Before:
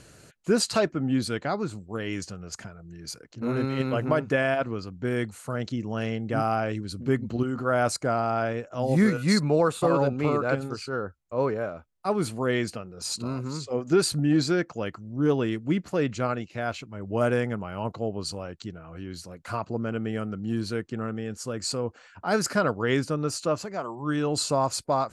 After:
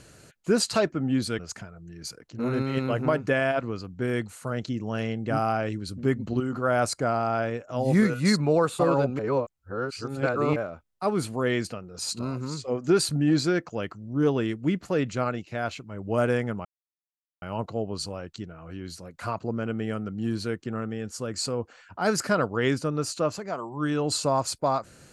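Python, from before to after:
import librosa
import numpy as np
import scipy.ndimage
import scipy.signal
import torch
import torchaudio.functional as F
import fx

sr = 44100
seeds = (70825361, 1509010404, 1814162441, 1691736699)

y = fx.edit(x, sr, fx.cut(start_s=1.39, length_s=1.03),
    fx.reverse_span(start_s=10.22, length_s=1.37),
    fx.insert_silence(at_s=17.68, length_s=0.77), tone=tone)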